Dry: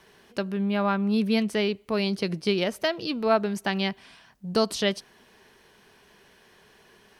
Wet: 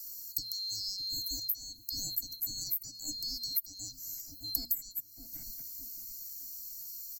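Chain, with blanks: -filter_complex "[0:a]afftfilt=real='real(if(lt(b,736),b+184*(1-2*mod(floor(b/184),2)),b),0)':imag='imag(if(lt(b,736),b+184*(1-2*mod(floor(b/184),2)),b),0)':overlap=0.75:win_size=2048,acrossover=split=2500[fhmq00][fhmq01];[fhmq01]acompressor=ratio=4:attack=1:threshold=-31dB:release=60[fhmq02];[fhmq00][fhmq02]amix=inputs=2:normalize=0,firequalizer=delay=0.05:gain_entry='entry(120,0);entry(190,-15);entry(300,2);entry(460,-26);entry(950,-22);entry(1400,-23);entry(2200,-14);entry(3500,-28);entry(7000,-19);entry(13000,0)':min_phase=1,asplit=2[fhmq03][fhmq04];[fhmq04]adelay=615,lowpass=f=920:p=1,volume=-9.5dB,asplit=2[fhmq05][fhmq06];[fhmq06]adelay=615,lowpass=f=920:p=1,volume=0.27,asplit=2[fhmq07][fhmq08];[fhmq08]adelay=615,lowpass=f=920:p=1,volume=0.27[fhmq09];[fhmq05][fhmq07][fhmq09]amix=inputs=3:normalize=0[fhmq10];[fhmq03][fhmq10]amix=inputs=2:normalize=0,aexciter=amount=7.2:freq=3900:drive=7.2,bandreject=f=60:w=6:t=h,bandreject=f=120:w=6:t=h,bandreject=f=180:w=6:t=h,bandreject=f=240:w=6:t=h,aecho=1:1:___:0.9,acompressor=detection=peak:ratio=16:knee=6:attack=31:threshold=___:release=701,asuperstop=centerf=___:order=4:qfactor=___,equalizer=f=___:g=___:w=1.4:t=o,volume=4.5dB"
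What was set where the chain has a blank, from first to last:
1.4, -37dB, 1100, 2.2, 76, -10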